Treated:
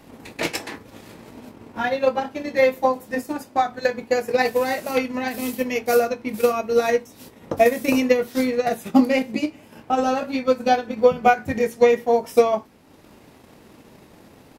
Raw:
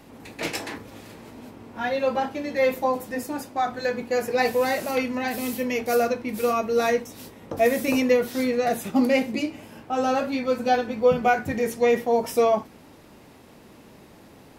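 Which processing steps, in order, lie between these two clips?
doubler 23 ms -12 dB; transient shaper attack +7 dB, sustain -5 dB

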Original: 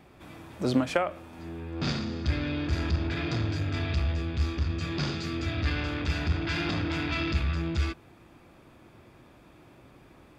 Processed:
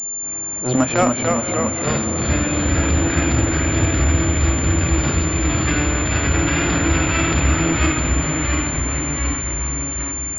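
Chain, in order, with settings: transient shaper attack -11 dB, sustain +2 dB; notches 50/100/150/200/250 Hz; in parallel at -4.5 dB: sample gate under -28.5 dBFS; on the sum: echoes that change speed 0.232 s, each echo -1 st, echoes 3; on a send: diffused feedback echo 0.527 s, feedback 64%, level -11 dB; on the sum: pulse-width modulation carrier 7200 Hz; gain +7 dB

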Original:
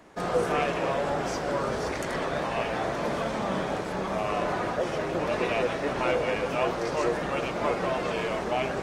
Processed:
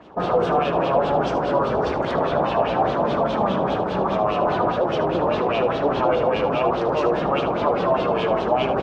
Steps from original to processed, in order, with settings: HPF 46 Hz; bell 2000 Hz -13 dB 0.84 oct; limiter -21 dBFS, peak gain reduction 6.5 dB; LFO low-pass sine 4.9 Hz 810–3500 Hz; echo 76 ms -11.5 dB; gain +7.5 dB

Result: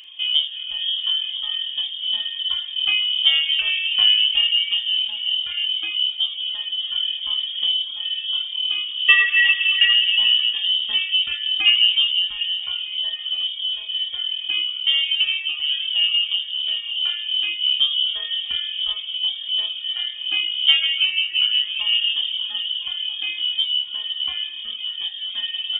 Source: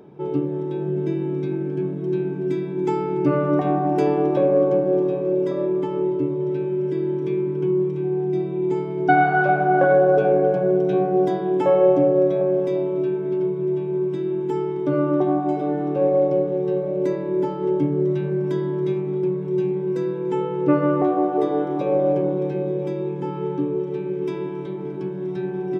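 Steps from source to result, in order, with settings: inverted band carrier 3400 Hz; flutter echo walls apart 6.6 m, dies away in 0.35 s; reverb removal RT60 1.5 s; gain +3.5 dB

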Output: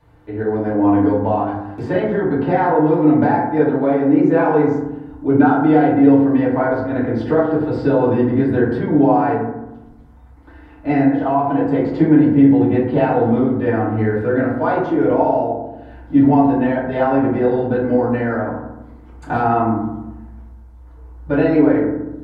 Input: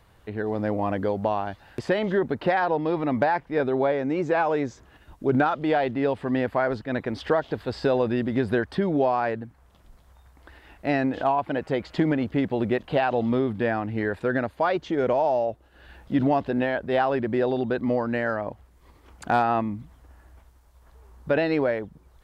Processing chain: high shelf 2200 Hz -9.5 dB; FDN reverb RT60 0.96 s, low-frequency decay 1.5×, high-frequency decay 0.35×, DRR -10 dB; gain -4 dB

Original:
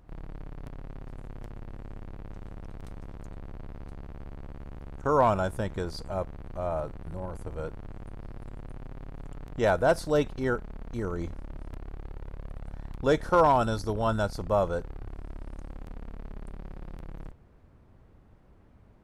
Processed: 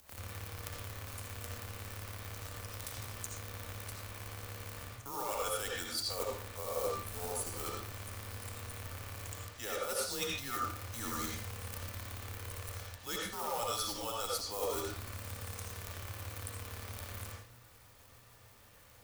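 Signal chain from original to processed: harmonic tremolo 6.3 Hz, depth 50%, crossover 470 Hz; in parallel at -6 dB: short-mantissa float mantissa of 2-bit; on the sum: pre-emphasis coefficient 0.97; reverse; compressor 20:1, threshold -52 dBFS, peak gain reduction 21.5 dB; reverse; high shelf 7900 Hz +5.5 dB; notch 480 Hz, Q 14; reverb RT60 0.45 s, pre-delay 40 ms, DRR -3 dB; frequency shift -120 Hz; gain +15 dB

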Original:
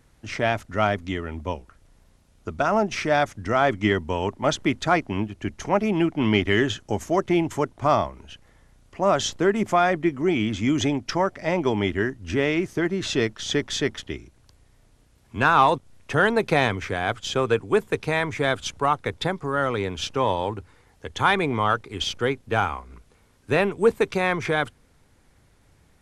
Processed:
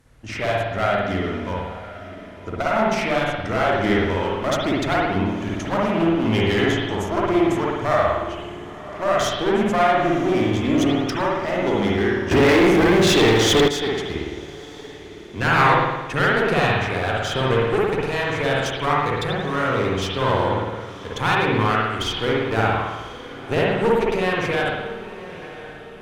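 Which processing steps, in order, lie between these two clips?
one-sided clip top -28.5 dBFS; diffused feedback echo 1 s, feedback 48%, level -15 dB; spring tank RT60 1.1 s, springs 54 ms, chirp 60 ms, DRR -4.5 dB; 12.31–13.68 sample leveller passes 3

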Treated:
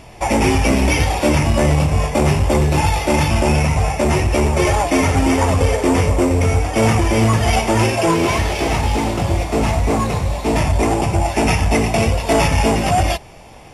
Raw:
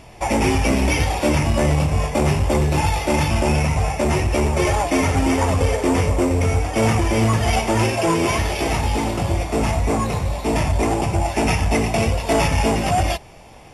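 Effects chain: 8.11–10.57 CVSD 64 kbps; gain +3 dB

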